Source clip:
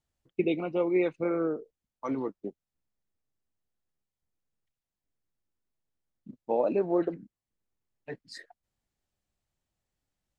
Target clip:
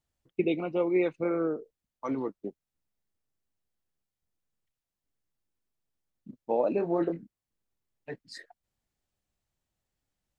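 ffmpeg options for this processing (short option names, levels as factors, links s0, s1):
-filter_complex "[0:a]asettb=1/sr,asplit=3[s0][s1][s2];[s0]atrim=end=6.754[s3];[s1]atrim=start=6.75:end=7.22,asetpts=PTS-STARTPTS,afade=t=in:d=0.004:c=qsin,afade=t=out:st=0.466:d=0.004:c=qsin,asplit=2[s4][s5];[s5]adelay=24,volume=0.531[s6];[s4][s6]amix=inputs=2:normalize=0,atrim=end_sample=20727[s7];[s2]atrim=start=7.216[s8];[s3][s7]acrossfade=d=0.004:c1=hsin:c2=qsin[s9];[s9][s8]acrossfade=d=0.004:c1=qsin:c2=hsin"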